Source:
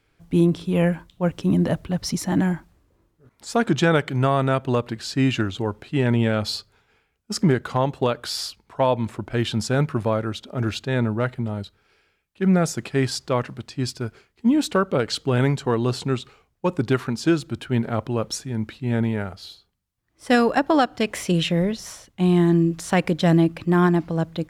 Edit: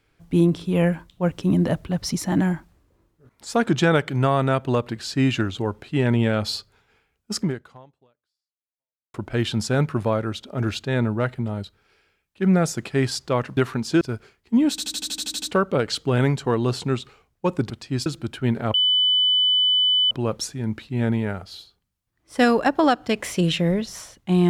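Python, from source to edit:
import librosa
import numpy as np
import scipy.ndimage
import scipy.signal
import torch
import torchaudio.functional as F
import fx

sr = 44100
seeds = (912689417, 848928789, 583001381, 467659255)

y = fx.edit(x, sr, fx.fade_out_span(start_s=7.36, length_s=1.78, curve='exp'),
    fx.swap(start_s=13.57, length_s=0.36, other_s=16.9, other_length_s=0.44),
    fx.stutter(start_s=14.62, slice_s=0.08, count=10),
    fx.insert_tone(at_s=18.02, length_s=1.37, hz=3000.0, db=-15.5), tone=tone)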